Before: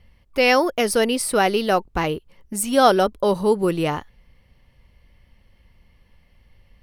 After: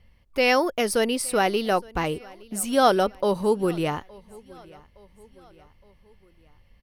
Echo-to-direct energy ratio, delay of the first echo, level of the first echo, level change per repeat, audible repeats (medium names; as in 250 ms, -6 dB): -23.0 dB, 866 ms, -24.0 dB, -6.0 dB, 2